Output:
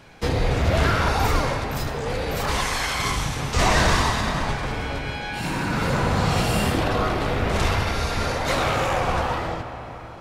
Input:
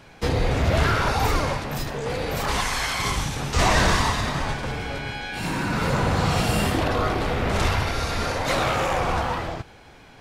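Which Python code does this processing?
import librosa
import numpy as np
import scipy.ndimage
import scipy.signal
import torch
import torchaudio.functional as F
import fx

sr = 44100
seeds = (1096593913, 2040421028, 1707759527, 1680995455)

y = fx.rev_freeverb(x, sr, rt60_s=4.5, hf_ratio=0.5, predelay_ms=35, drr_db=8.0)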